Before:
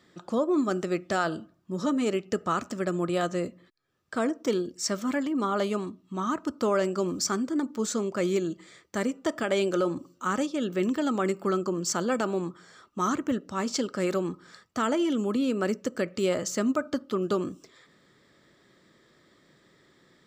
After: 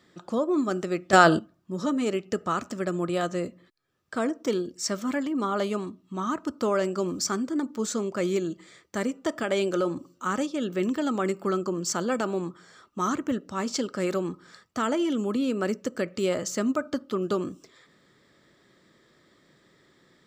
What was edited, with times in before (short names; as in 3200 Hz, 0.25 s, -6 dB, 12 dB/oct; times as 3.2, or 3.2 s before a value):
1.13–1.39 gain +11 dB